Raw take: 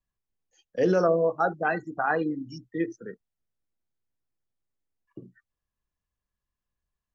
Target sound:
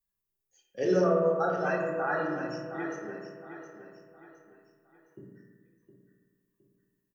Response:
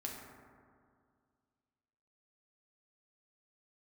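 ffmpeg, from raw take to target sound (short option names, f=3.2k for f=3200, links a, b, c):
-filter_complex "[0:a]aemphasis=mode=production:type=50fm,aecho=1:1:714|1428|2142|2856:0.299|0.11|0.0409|0.0151[a];[1:a]atrim=start_sample=2205,asetrate=66150,aresample=44100[b];[a][b]afir=irnorm=-1:irlink=0"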